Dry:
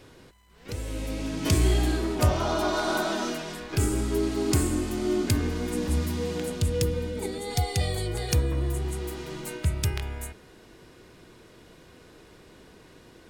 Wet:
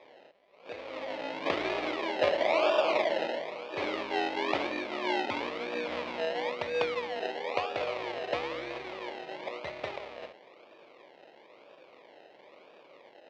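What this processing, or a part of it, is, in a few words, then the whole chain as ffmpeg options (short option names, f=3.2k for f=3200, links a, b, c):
circuit-bent sampling toy: -af "acrusher=samples=30:mix=1:aa=0.000001:lfo=1:lforange=18:lforate=1,highpass=540,equalizer=f=570:t=q:w=4:g=9,equalizer=f=1.5k:t=q:w=4:g=-7,equalizer=f=2.3k:t=q:w=4:g=5,lowpass=f=4.1k:w=0.5412,lowpass=f=4.1k:w=1.3066"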